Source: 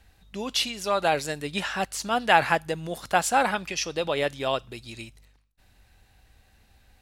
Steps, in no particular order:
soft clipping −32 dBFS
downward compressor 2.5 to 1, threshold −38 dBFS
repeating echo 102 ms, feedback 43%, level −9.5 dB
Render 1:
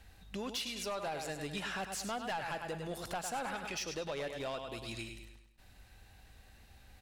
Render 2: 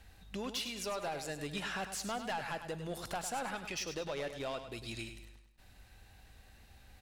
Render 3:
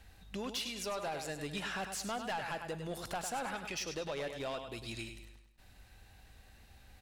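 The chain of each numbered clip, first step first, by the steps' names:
repeating echo, then downward compressor, then soft clipping
downward compressor, then soft clipping, then repeating echo
downward compressor, then repeating echo, then soft clipping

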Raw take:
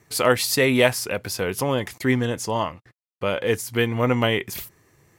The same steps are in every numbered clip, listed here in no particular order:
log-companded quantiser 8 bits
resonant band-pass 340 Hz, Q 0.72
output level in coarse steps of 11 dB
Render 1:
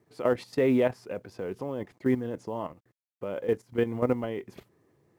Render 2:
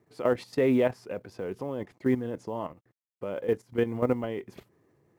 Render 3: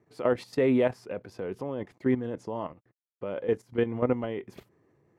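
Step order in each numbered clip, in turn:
resonant band-pass, then output level in coarse steps, then log-companded quantiser
resonant band-pass, then log-companded quantiser, then output level in coarse steps
log-companded quantiser, then resonant band-pass, then output level in coarse steps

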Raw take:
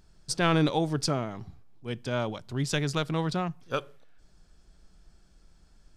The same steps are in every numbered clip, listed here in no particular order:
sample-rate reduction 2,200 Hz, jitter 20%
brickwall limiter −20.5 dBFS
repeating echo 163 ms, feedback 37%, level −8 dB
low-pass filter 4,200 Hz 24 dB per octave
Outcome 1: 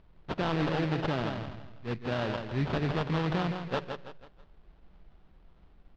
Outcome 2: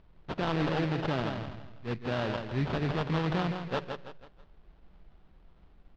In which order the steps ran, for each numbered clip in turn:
repeating echo, then sample-rate reduction, then low-pass filter, then brickwall limiter
repeating echo, then brickwall limiter, then sample-rate reduction, then low-pass filter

